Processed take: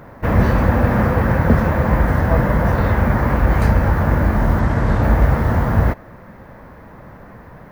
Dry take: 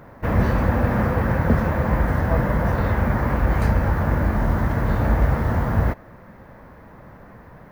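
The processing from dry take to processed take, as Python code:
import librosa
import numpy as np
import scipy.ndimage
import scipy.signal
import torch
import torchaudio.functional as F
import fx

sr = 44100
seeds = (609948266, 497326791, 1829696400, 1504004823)

y = fx.resample_linear(x, sr, factor=3, at=(4.59, 5.03))
y = F.gain(torch.from_numpy(y), 4.5).numpy()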